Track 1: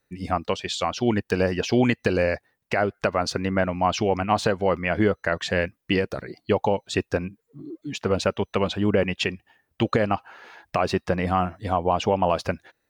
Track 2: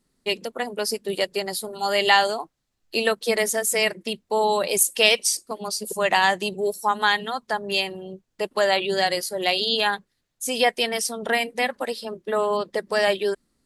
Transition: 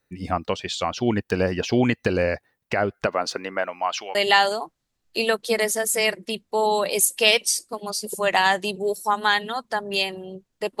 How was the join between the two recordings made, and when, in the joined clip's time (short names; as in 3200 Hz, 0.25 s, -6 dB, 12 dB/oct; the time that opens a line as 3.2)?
track 1
3.06–4.15 HPF 240 Hz -> 1200 Hz
4.15 switch to track 2 from 1.93 s